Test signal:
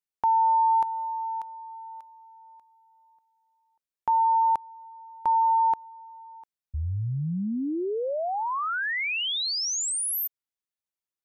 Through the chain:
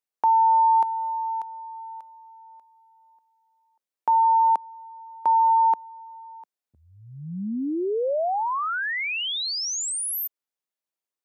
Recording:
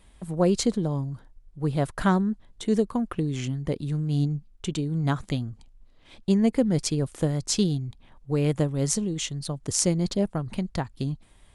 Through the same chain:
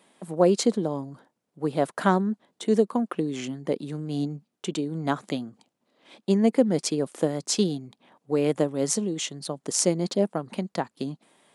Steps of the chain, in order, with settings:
high-pass filter 190 Hz 24 dB per octave
parametric band 600 Hz +4.5 dB 1.8 octaves

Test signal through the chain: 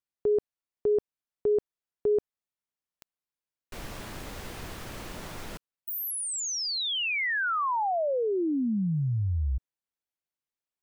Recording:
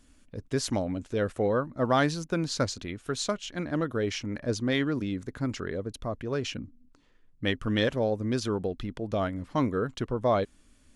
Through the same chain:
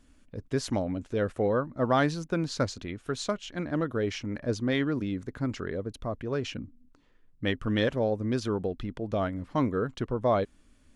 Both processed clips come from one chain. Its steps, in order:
high-shelf EQ 3,800 Hz −6.5 dB

